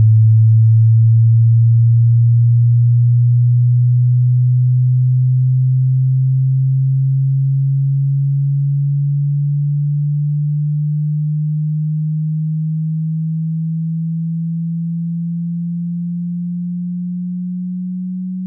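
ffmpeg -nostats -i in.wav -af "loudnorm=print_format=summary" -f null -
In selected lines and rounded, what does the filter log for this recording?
Input Integrated:    -15.6 LUFS
Input True Peak:      -5.3 dBTP
Input LRA:            10.5 LU
Input Threshold:     -25.6 LUFS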